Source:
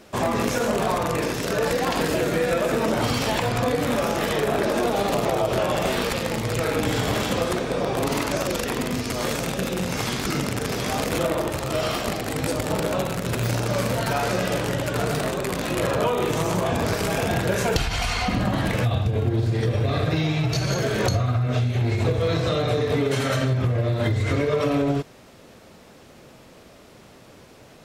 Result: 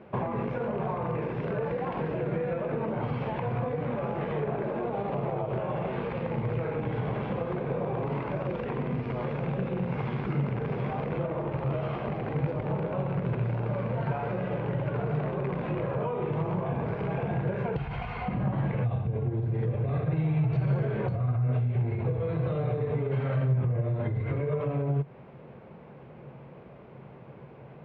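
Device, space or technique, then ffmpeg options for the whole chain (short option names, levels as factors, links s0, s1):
bass amplifier: -af "acompressor=threshold=0.0398:ratio=6,highpass=67,equalizer=f=90:t=q:w=4:g=-7,equalizer=f=140:t=q:w=4:g=9,equalizer=f=280:t=q:w=4:g=-8,equalizer=f=650:t=q:w=4:g=-4,equalizer=f=1300:t=q:w=4:g=-7,equalizer=f=1800:t=q:w=4:g=-8,lowpass=f=2000:w=0.5412,lowpass=f=2000:w=1.3066,volume=1.26"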